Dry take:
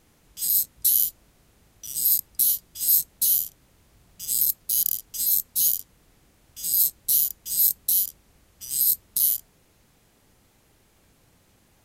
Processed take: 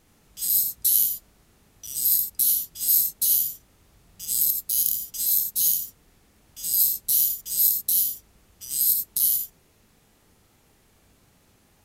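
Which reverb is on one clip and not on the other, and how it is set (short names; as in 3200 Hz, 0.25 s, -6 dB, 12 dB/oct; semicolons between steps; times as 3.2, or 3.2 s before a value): non-linear reverb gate 0.11 s rising, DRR 3.5 dB; gain -1 dB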